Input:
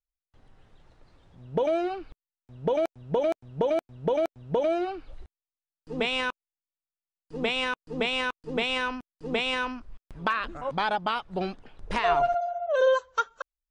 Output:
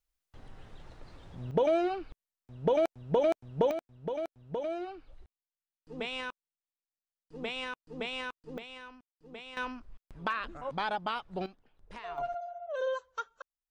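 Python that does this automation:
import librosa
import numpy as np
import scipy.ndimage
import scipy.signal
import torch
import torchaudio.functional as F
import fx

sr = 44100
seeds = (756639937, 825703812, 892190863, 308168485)

y = fx.gain(x, sr, db=fx.steps((0.0, 7.0), (1.51, -1.0), (3.71, -9.5), (8.58, -19.0), (9.57, -6.0), (11.46, -18.0), (12.18, -11.0)))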